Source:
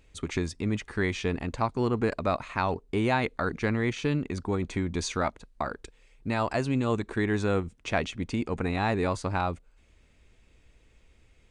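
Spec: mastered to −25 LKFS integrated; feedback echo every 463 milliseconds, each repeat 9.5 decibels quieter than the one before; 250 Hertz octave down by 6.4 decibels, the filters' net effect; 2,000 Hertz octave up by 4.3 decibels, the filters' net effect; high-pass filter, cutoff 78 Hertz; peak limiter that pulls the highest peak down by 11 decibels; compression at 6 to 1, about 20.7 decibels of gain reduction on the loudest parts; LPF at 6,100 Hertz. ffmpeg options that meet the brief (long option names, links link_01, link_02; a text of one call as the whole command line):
ffmpeg -i in.wav -af "highpass=78,lowpass=6100,equalizer=frequency=250:width_type=o:gain=-8.5,equalizer=frequency=2000:width_type=o:gain=5.5,acompressor=threshold=-44dB:ratio=6,alimiter=level_in=13.5dB:limit=-24dB:level=0:latency=1,volume=-13.5dB,aecho=1:1:463|926|1389|1852:0.335|0.111|0.0365|0.012,volume=23.5dB" out.wav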